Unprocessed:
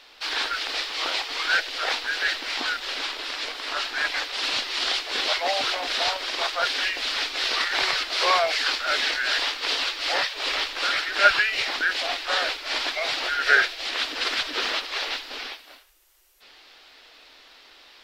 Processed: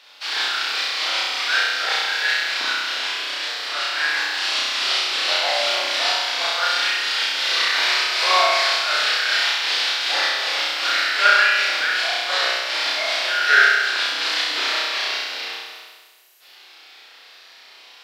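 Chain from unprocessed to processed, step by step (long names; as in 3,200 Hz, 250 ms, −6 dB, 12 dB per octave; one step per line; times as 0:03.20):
high-pass filter 730 Hz 6 dB per octave
on a send: flutter between parallel walls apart 5.6 metres, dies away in 1.4 s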